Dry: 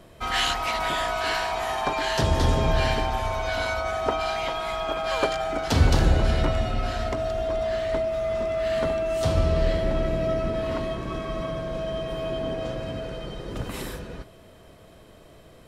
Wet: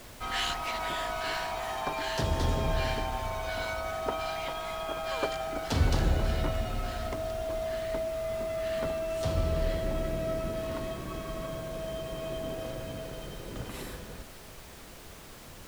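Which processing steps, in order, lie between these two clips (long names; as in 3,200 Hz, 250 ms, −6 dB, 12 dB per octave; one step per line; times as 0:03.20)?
background noise pink −41 dBFS
level −7 dB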